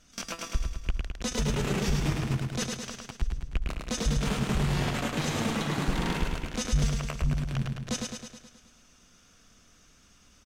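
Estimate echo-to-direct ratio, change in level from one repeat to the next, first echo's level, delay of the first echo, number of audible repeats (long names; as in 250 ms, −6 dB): −1.5 dB, −4.5 dB, −3.5 dB, 106 ms, 7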